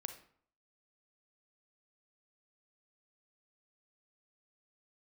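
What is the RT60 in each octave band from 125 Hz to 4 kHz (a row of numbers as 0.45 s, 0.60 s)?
0.60 s, 0.60 s, 0.55 s, 0.60 s, 0.50 s, 0.40 s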